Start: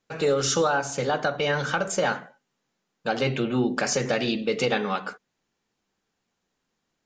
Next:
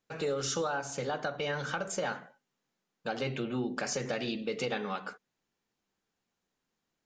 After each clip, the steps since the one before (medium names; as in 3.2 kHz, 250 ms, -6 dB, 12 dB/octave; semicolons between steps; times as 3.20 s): compression 1.5:1, threshold -29 dBFS, peak gain reduction 4 dB; trim -6 dB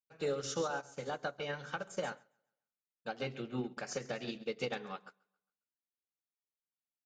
feedback delay 136 ms, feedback 42%, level -12.5 dB; upward expansion 2.5:1, over -47 dBFS; trim -1.5 dB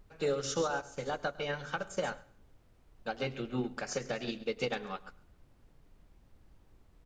added noise brown -62 dBFS; feedback delay 103 ms, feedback 27%, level -23 dB; trim +3.5 dB